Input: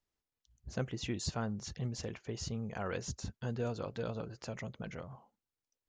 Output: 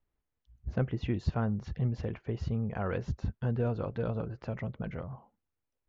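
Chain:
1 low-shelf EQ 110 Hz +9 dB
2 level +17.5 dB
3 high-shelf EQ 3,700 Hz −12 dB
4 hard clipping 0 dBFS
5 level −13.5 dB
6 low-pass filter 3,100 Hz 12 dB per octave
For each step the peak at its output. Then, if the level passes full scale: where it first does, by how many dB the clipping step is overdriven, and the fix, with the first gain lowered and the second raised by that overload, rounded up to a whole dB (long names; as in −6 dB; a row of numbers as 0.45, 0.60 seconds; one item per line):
−20.0, −2.5, −3.0, −3.0, −16.5, −16.5 dBFS
no step passes full scale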